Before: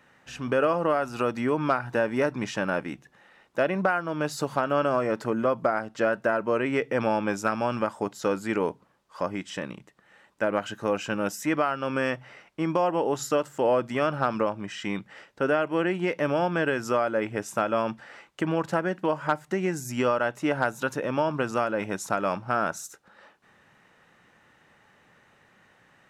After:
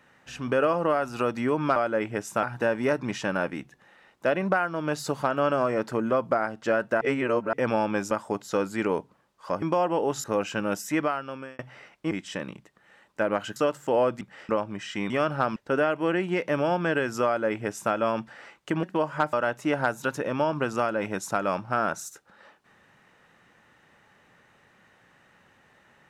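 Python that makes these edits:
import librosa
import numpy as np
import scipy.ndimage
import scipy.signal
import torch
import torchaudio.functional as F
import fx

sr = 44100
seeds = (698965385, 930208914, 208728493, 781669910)

y = fx.edit(x, sr, fx.reverse_span(start_s=6.34, length_s=0.52),
    fx.cut(start_s=7.44, length_s=0.38),
    fx.swap(start_s=9.33, length_s=1.45, other_s=12.65, other_length_s=0.62),
    fx.fade_out_span(start_s=11.5, length_s=0.63),
    fx.swap(start_s=13.92, length_s=0.46, other_s=14.99, other_length_s=0.28),
    fx.duplicate(start_s=16.97, length_s=0.67, to_s=1.76),
    fx.cut(start_s=18.54, length_s=0.38),
    fx.cut(start_s=19.42, length_s=0.69), tone=tone)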